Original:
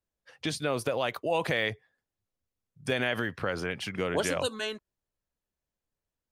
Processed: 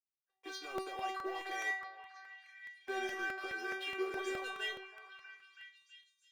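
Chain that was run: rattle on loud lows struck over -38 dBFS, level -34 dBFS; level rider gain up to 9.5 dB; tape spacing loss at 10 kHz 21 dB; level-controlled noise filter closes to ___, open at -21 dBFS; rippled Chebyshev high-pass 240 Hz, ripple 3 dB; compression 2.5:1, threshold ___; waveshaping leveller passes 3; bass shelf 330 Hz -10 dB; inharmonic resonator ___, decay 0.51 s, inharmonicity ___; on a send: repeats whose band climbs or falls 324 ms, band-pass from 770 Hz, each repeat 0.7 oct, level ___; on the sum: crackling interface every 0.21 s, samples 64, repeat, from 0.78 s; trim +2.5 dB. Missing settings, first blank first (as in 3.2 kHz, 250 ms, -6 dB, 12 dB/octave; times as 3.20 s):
1.2 kHz, -26 dBFS, 380 Hz, 0.002, -7 dB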